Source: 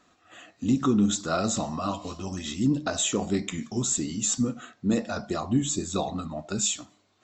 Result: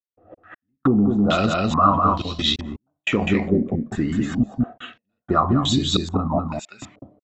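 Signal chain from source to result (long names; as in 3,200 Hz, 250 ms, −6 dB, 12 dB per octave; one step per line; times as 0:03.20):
low-shelf EQ 120 Hz +10 dB
gate pattern ".x...xxxx.xxx" 88 BPM −60 dB
0:06.39–0:06.80: first difference
single-tap delay 201 ms −3.5 dB
downward compressor, threshold −23 dBFS, peak gain reduction 8 dB
low-pass on a step sequencer 2.3 Hz 540–3,900 Hz
level +7.5 dB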